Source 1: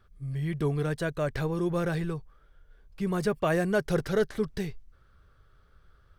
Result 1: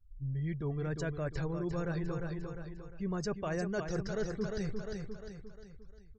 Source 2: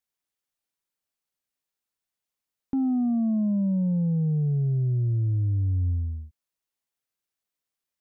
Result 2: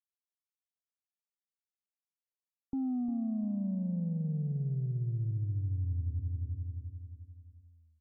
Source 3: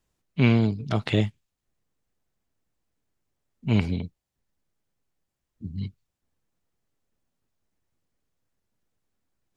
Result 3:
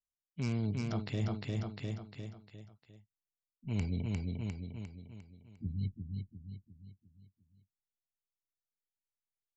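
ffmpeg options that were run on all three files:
-af "afftdn=nr=31:nf=-46,lowshelf=f=100:g=9,aresample=16000,volume=7.5dB,asoftclip=hard,volume=-7.5dB,aresample=44100,aecho=1:1:352|704|1056|1408|1760:0.376|0.169|0.0761|0.0342|0.0154,aexciter=amount=7.9:drive=4.2:freq=5.1k,areverse,acompressor=threshold=-29dB:ratio=5,areverse,volume=-3dB"

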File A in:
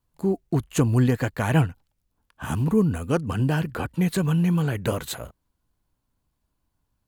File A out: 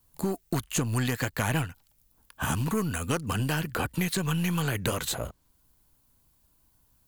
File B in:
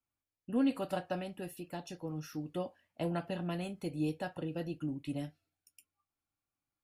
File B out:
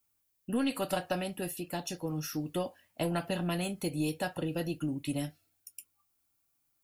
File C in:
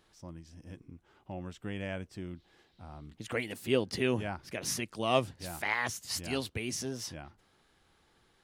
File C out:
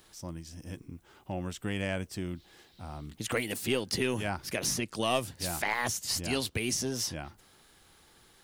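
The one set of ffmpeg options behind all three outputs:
-filter_complex "[0:a]aeval=exprs='0.501*(cos(1*acos(clip(val(0)/0.501,-1,1)))-cos(1*PI/2))+0.0158*(cos(8*acos(clip(val(0)/0.501,-1,1)))-cos(8*PI/2))':c=same,aemphasis=mode=production:type=50kf,acrossover=split=1000|7900[a][b][c];[a]acompressor=threshold=-34dB:ratio=4[d];[b]acompressor=threshold=-37dB:ratio=4[e];[c]acompressor=threshold=-49dB:ratio=4[f];[d][e][f]amix=inputs=3:normalize=0,volume=5.5dB"

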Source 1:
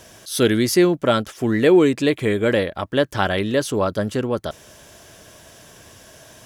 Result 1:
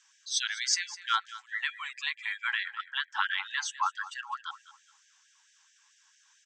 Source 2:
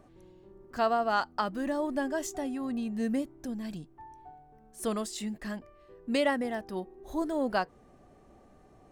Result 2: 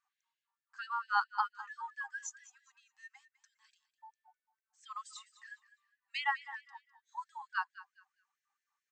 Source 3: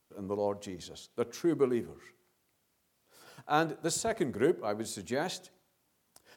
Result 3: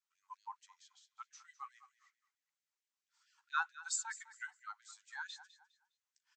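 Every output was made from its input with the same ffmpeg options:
-af "afftdn=nr=17:nf=-32,equalizer=f=315:t=o:w=0.33:g=10,equalizer=f=500:t=o:w=0.33:g=-8,equalizer=f=6.3k:t=o:w=0.33:g=4,afftfilt=real='re*between(b*sr/4096,210,8300)':imag='im*between(b*sr/4096,210,8300)':win_size=4096:overlap=0.75,alimiter=limit=-10dB:level=0:latency=1:release=426,aecho=1:1:204|408|612:0.158|0.0444|0.0124,afftfilt=real='re*gte(b*sr/1024,760*pow(1600/760,0.5+0.5*sin(2*PI*4.5*pts/sr)))':imag='im*gte(b*sr/1024,760*pow(1600/760,0.5+0.5*sin(2*PI*4.5*pts/sr)))':win_size=1024:overlap=0.75"

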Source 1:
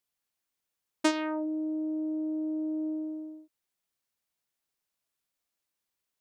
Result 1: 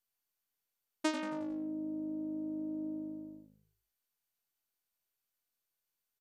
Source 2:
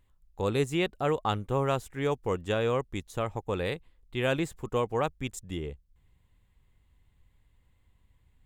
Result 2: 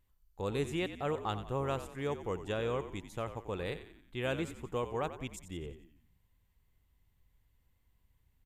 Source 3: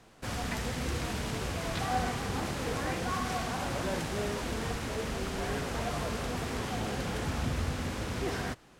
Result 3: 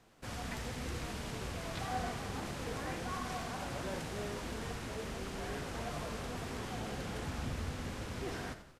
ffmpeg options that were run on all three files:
-filter_complex "[0:a]asplit=6[a][b][c][d][e][f];[b]adelay=90,afreqshift=-52,volume=-11.5dB[g];[c]adelay=180,afreqshift=-104,volume=-17.9dB[h];[d]adelay=270,afreqshift=-156,volume=-24.3dB[i];[e]adelay=360,afreqshift=-208,volume=-30.6dB[j];[f]adelay=450,afreqshift=-260,volume=-37dB[k];[a][g][h][i][j][k]amix=inputs=6:normalize=0,volume=-7dB" -ar 48000 -c:a mp2 -b:a 192k

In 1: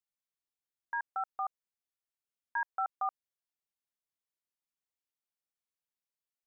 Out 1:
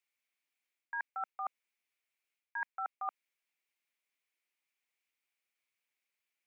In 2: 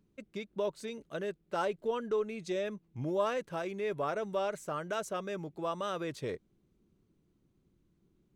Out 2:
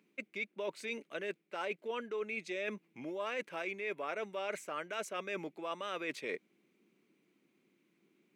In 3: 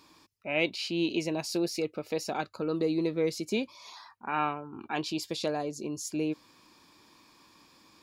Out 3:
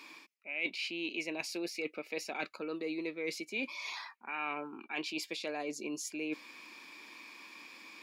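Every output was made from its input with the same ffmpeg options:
-af "highpass=f=220:w=0.5412,highpass=f=220:w=1.3066,equalizer=f=2.3k:w=2:g=15,areverse,acompressor=threshold=-38dB:ratio=5,areverse,volume=2dB"

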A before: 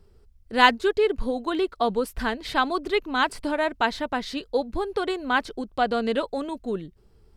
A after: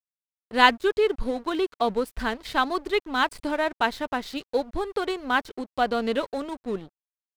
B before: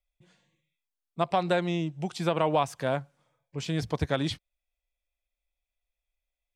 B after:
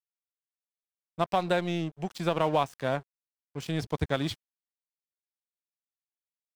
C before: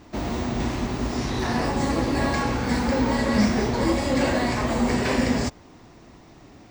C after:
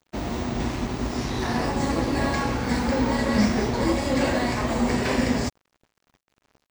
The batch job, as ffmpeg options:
-af "aeval=exprs='sgn(val(0))*max(abs(val(0))-0.00794,0)':c=same"

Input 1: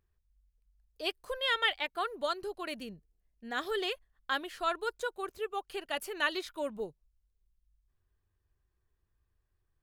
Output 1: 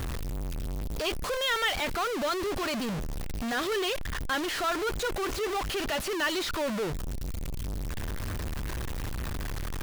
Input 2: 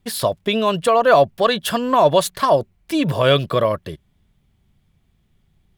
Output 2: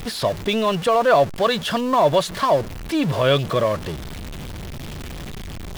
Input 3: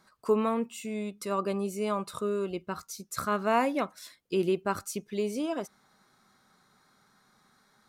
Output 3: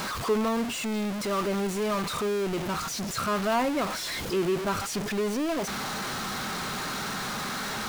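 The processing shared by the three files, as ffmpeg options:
-filter_complex "[0:a]aeval=exprs='val(0)+0.5*0.075*sgn(val(0))':c=same,acrossover=split=6700[a][b];[b]acompressor=threshold=-37dB:ratio=4:attack=1:release=60[c];[a][c]amix=inputs=2:normalize=0,volume=-3.5dB"

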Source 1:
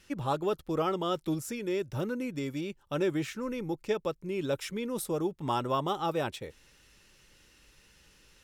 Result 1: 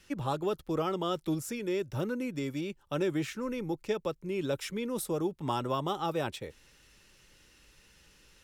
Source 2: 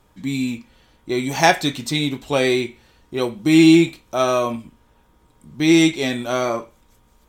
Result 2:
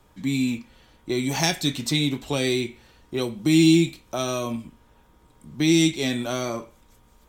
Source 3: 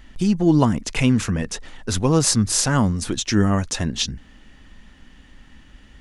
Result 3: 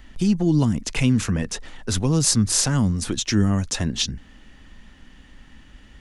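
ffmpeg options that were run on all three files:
-filter_complex "[0:a]acrossover=split=290|3000[a][b][c];[b]acompressor=threshold=-28dB:ratio=6[d];[a][d][c]amix=inputs=3:normalize=0"

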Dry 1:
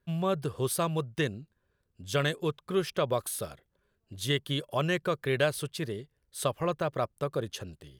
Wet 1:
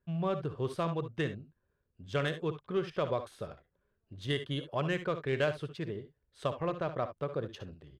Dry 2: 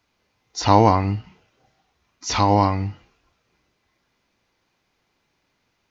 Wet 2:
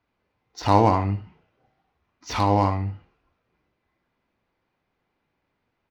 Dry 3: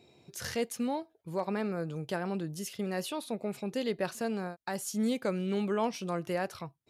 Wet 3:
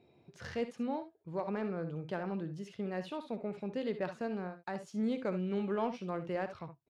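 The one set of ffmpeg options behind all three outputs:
-af "adynamicsmooth=sensitivity=1.5:basefreq=2.7k,aecho=1:1:60|72:0.237|0.2,volume=-3.5dB"

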